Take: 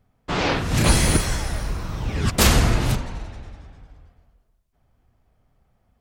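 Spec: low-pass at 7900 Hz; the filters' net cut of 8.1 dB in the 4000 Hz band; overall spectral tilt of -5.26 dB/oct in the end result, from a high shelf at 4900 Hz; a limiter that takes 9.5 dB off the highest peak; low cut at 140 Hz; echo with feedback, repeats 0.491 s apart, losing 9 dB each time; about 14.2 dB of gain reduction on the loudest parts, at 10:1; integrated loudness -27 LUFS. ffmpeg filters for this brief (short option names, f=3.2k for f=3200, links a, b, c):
-af "highpass=140,lowpass=7.9k,equalizer=f=4k:t=o:g=-6.5,highshelf=f=4.9k:g=-8,acompressor=threshold=-32dB:ratio=10,alimiter=level_in=3.5dB:limit=-24dB:level=0:latency=1,volume=-3.5dB,aecho=1:1:491|982|1473|1964:0.355|0.124|0.0435|0.0152,volume=11dB"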